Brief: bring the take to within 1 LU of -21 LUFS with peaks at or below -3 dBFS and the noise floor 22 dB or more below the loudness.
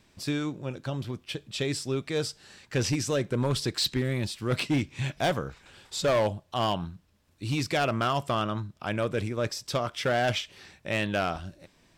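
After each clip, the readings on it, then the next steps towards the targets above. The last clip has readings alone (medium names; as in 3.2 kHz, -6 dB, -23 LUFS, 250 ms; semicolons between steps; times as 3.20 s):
clipped samples 1.6%; clipping level -20.0 dBFS; loudness -29.5 LUFS; peak level -20.0 dBFS; loudness target -21.0 LUFS
-> clip repair -20 dBFS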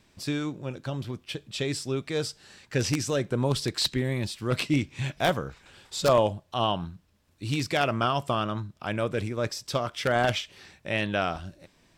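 clipped samples 0.0%; loudness -28.5 LUFS; peak level -11.0 dBFS; loudness target -21.0 LUFS
-> trim +7.5 dB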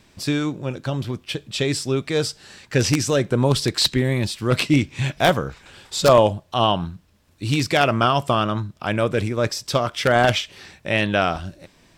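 loudness -21.0 LUFS; peak level -3.5 dBFS; noise floor -57 dBFS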